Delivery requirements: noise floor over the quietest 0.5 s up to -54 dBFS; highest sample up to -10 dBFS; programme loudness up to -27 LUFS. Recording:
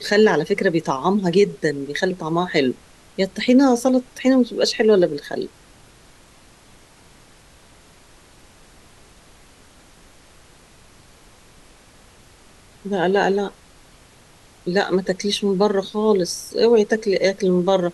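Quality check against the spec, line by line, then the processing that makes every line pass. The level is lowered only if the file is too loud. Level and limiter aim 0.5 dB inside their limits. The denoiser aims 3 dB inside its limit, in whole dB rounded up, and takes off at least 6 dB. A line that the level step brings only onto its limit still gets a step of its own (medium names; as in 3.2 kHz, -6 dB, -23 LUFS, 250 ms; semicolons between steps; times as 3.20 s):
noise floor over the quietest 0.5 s -50 dBFS: fail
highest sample -5.5 dBFS: fail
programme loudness -19.5 LUFS: fail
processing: trim -8 dB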